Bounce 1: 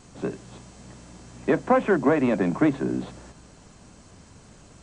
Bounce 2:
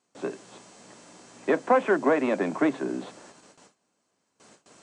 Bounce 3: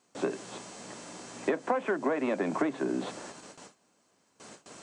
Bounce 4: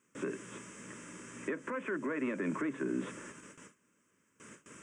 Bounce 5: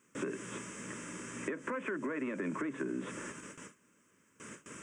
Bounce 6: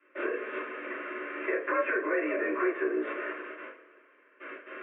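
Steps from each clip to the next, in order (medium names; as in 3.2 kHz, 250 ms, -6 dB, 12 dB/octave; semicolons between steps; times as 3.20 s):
high-pass 320 Hz 12 dB/octave; gate with hold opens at -43 dBFS
compression 10:1, threshold -31 dBFS, peak gain reduction 15.5 dB; trim +5.5 dB
peak limiter -23 dBFS, peak gain reduction 7.5 dB; static phaser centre 1.8 kHz, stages 4
compression 6:1, threshold -38 dBFS, peak gain reduction 8 dB; trim +4.5 dB
mistuned SSB +54 Hz 320–2500 Hz; two-slope reverb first 0.29 s, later 2.3 s, from -22 dB, DRR -9.5 dB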